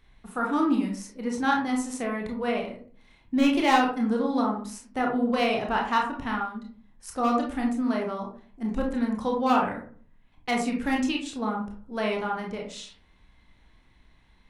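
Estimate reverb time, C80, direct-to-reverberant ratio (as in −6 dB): 0.45 s, 11.0 dB, −1.0 dB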